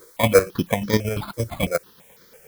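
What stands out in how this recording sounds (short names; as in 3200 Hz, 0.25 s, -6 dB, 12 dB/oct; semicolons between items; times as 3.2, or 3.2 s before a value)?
aliases and images of a low sample rate 2800 Hz, jitter 0%; chopped level 8.6 Hz, depth 60%, duty 35%; a quantiser's noise floor 10-bit, dither triangular; notches that jump at a steady rate 6 Hz 740–2700 Hz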